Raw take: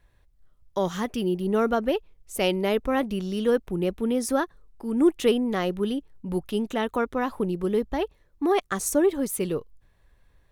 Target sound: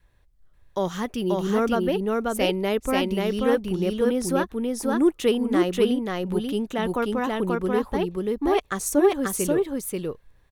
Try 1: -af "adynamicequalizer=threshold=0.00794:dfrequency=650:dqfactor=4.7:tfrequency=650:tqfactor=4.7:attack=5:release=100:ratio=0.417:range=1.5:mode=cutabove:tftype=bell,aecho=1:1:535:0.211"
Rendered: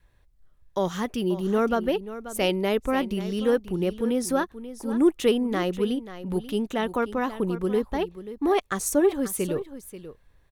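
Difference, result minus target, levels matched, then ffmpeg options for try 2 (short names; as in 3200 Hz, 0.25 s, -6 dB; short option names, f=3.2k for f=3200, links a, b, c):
echo-to-direct -11.5 dB
-af "adynamicequalizer=threshold=0.00794:dfrequency=650:dqfactor=4.7:tfrequency=650:tqfactor=4.7:attack=5:release=100:ratio=0.417:range=1.5:mode=cutabove:tftype=bell,aecho=1:1:535:0.794"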